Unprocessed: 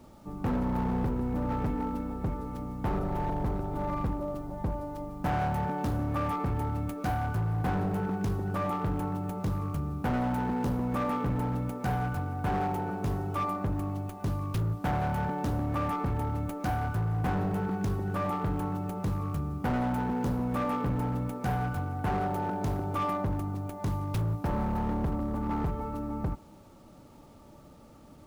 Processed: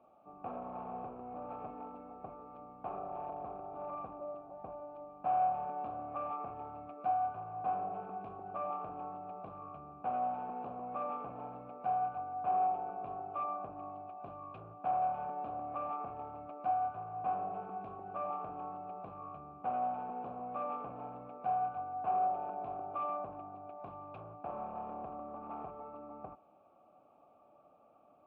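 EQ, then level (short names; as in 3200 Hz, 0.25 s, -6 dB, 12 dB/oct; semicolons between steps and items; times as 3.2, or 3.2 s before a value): vowel filter a; air absorption 440 m; +4.5 dB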